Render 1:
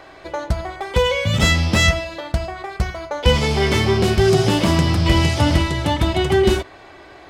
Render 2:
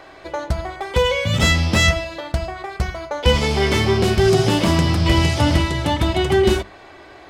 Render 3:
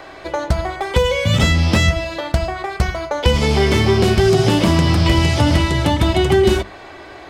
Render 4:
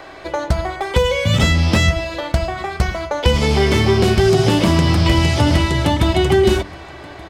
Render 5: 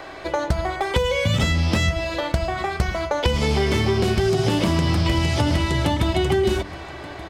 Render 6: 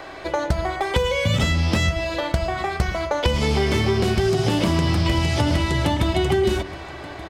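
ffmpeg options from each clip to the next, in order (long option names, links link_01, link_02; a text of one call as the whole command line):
ffmpeg -i in.wav -af "bandreject=frequency=50:width_type=h:width=6,bandreject=frequency=100:width_type=h:width=6,bandreject=frequency=150:width_type=h:width=6,bandreject=frequency=200:width_type=h:width=6" out.wav
ffmpeg -i in.wav -filter_complex "[0:a]acrossover=split=460|5500[link_01][link_02][link_03];[link_01]acompressor=threshold=-17dB:ratio=4[link_04];[link_02]acompressor=threshold=-25dB:ratio=4[link_05];[link_03]acompressor=threshold=-40dB:ratio=4[link_06];[link_04][link_05][link_06]amix=inputs=3:normalize=0,volume=5.5dB" out.wav
ffmpeg -i in.wav -af "aecho=1:1:1178:0.0668" out.wav
ffmpeg -i in.wav -af "acompressor=threshold=-18dB:ratio=3" out.wav
ffmpeg -i in.wav -filter_complex "[0:a]asplit=2[link_01][link_02];[link_02]adelay=120,highpass=300,lowpass=3400,asoftclip=type=hard:threshold=-14.5dB,volume=-15dB[link_03];[link_01][link_03]amix=inputs=2:normalize=0" out.wav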